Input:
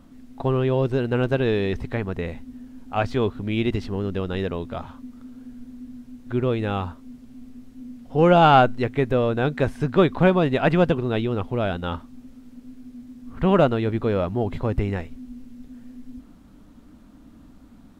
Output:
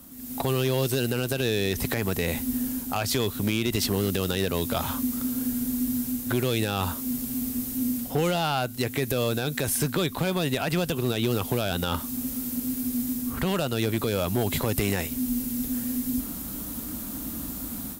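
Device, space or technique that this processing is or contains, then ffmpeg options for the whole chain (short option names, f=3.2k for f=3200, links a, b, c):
FM broadcast chain: -filter_complex "[0:a]highpass=42,dynaudnorm=f=160:g=3:m=13dB,acrossover=split=140|2500[a][b][c];[a]acompressor=threshold=-32dB:ratio=4[d];[b]acompressor=threshold=-22dB:ratio=4[e];[c]acompressor=threshold=-33dB:ratio=4[f];[d][e][f]amix=inputs=3:normalize=0,aemphasis=mode=production:type=50fm,alimiter=limit=-14dB:level=0:latency=1:release=59,asoftclip=type=hard:threshold=-17.5dB,lowpass=f=15k:w=0.5412,lowpass=f=15k:w=1.3066,aemphasis=mode=production:type=50fm"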